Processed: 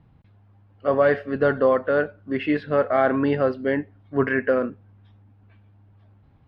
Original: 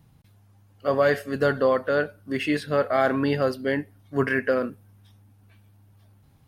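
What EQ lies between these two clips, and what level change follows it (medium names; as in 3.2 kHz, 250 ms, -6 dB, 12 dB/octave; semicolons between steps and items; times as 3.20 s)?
distance through air 330 m; peaking EQ 140 Hz -3.5 dB 0.87 oct; treble shelf 7.4 kHz -11 dB; +3.5 dB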